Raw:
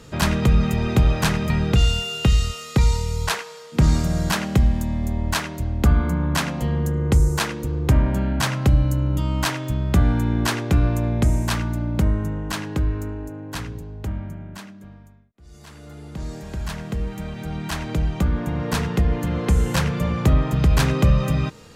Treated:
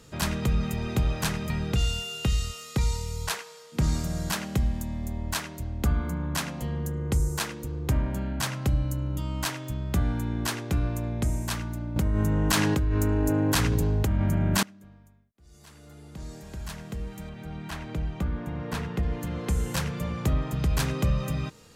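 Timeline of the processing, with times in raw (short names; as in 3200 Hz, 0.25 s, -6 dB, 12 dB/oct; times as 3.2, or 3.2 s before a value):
11.96–14.63 fast leveller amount 100%
17.29–19.03 tone controls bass 0 dB, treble -9 dB
whole clip: high shelf 5600 Hz +7.5 dB; gain -8.5 dB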